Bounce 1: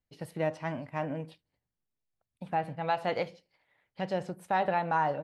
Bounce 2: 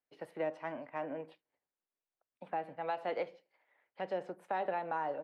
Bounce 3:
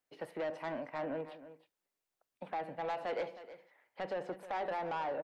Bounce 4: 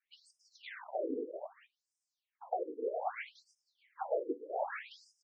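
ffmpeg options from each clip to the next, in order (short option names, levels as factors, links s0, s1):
-filter_complex "[0:a]acrossover=split=300 2600:gain=0.0631 1 0.158[s0][s1][s2];[s0][s1][s2]amix=inputs=3:normalize=0,acrossover=split=460|3000[s3][s4][s5];[s4]acompressor=threshold=0.01:ratio=2.5[s6];[s3][s6][s5]amix=inputs=3:normalize=0"
-filter_complex "[0:a]asplit=2[s0][s1];[s1]alimiter=level_in=2.51:limit=0.0631:level=0:latency=1:release=16,volume=0.398,volume=1.41[s2];[s0][s2]amix=inputs=2:normalize=0,asoftclip=type=tanh:threshold=0.0376,aecho=1:1:314:0.188,volume=0.708"
-filter_complex "[0:a]asplit=2[s0][s1];[s1]adelay=300,highpass=300,lowpass=3400,asoftclip=type=hard:threshold=0.0112,volume=0.398[s2];[s0][s2]amix=inputs=2:normalize=0,afftfilt=real='hypot(re,im)*cos(2*PI*random(0))':imag='hypot(re,im)*sin(2*PI*random(1))':win_size=512:overlap=0.75,afftfilt=real='re*between(b*sr/1024,340*pow(7000/340,0.5+0.5*sin(2*PI*0.63*pts/sr))/1.41,340*pow(7000/340,0.5+0.5*sin(2*PI*0.63*pts/sr))*1.41)':imag='im*between(b*sr/1024,340*pow(7000/340,0.5+0.5*sin(2*PI*0.63*pts/sr))/1.41,340*pow(7000/340,0.5+0.5*sin(2*PI*0.63*pts/sr))*1.41)':win_size=1024:overlap=0.75,volume=3.98"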